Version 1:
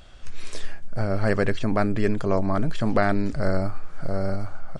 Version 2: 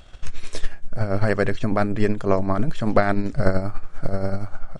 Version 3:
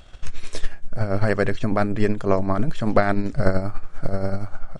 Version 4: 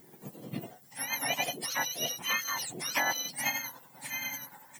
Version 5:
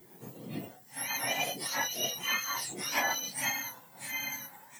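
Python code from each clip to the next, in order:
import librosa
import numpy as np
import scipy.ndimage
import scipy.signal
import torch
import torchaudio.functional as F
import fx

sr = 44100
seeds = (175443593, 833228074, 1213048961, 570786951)

y1 = fx.notch(x, sr, hz=4700.0, q=19.0)
y1 = fx.transient(y1, sr, attack_db=10, sustain_db=-4)
y2 = y1
y3 = fx.octave_mirror(y2, sr, pivot_hz=1100.0)
y3 = fx.dmg_noise_colour(y3, sr, seeds[0], colour='violet', level_db=-56.0)
y3 = y3 * 10.0 ** (-5.5 / 20.0)
y4 = fx.phase_scramble(y3, sr, seeds[1], window_ms=100)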